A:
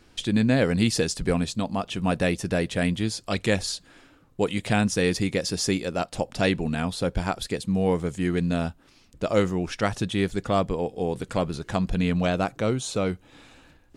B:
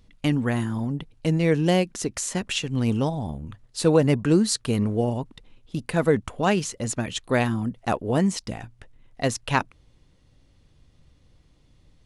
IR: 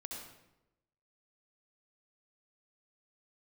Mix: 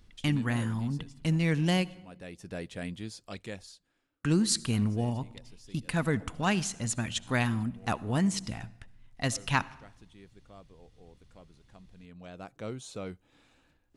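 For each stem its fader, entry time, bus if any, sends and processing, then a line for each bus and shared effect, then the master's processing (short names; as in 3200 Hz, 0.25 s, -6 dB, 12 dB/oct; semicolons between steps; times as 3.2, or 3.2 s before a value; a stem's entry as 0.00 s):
-13.5 dB, 0.00 s, no send, auto duck -16 dB, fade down 1.00 s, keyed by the second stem
-3.0 dB, 0.00 s, muted 1.95–4.24, send -15 dB, bell 470 Hz -11 dB 1.3 oct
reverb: on, RT60 0.95 s, pre-delay 60 ms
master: dry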